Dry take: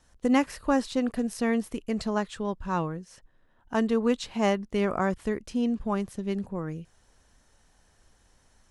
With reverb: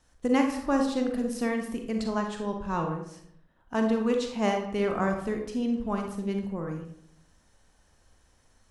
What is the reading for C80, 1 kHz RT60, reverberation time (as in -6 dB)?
9.5 dB, 0.65 s, 0.70 s